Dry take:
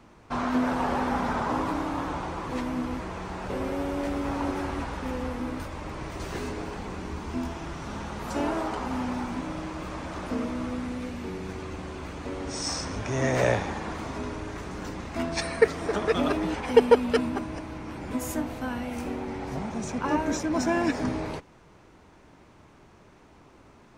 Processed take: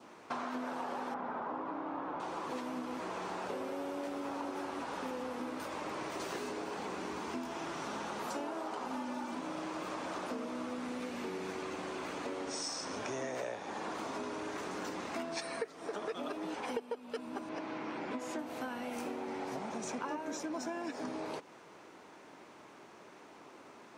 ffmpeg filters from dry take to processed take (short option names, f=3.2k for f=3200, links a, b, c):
-filter_complex "[0:a]asettb=1/sr,asplit=3[a][b][c];[a]atrim=end=1.144[d];[b]atrim=start=1.14:end=2.2,asetpts=PTS-STARTPTS,afade=t=in:d=0.004:c=qsin,afade=t=out:st=1.056:d=0.004:c=qsin,lowpass=1.9k[e];[c]atrim=start=2.196[f];[d][e]acrossfade=d=0.004:c1=hsin:c2=qsin[g];[g][f]acrossfade=d=0.004:c1=qsin:c2=hsin,asettb=1/sr,asplit=3[h][i][j];[h]atrim=end=8.934[k];[i]atrim=start=8.93:end=9.35,asetpts=PTS-STARTPTS,afade=t=in:d=0.004:c=qsin,afade=t=out:st=0.416:d=0.004:c=qsin,aecho=1:1:3.4:0.65,atrim=end_sample=18522[l];[j]atrim=start=9.346[m];[k][l]acrossfade=d=0.004:c1=hsin:c2=qsin[n];[n][m]acrossfade=d=0.004:c1=qsin:c2=hsin,asettb=1/sr,asplit=3[o][p][q];[o]atrim=end=17.494[r];[p]atrim=start=17.49:end=18.39,asetpts=PTS-STARTPTS,afade=t=in:d=0.004:c=qsin,afade=t=out:st=0.896:d=0.004:c=qsin,highpass=110,lowpass=4.6k[s];[q]atrim=start=18.386[t];[r][s]acrossfade=d=0.004:c1=hsin:c2=qsin[u];[u][t]acrossfade=d=0.004:c1=qsin:c2=hsin,highpass=300,adynamicequalizer=threshold=0.00398:dfrequency=2000:dqfactor=2.3:tfrequency=2000:tqfactor=2.3:attack=5:release=100:ratio=0.375:range=2:mode=cutabove:tftype=bell,acompressor=threshold=-38dB:ratio=10,volume=2dB"